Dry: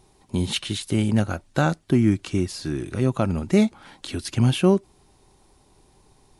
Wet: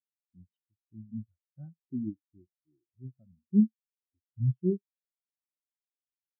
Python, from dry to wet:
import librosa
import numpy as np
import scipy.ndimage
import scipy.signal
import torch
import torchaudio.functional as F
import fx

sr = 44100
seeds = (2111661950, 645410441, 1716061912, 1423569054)

p1 = x + fx.room_early_taps(x, sr, ms=(55, 72), db=(-17.0, -17.5), dry=0)
p2 = fx.spectral_expand(p1, sr, expansion=4.0)
y = p2 * 10.0 ** (-6.0 / 20.0)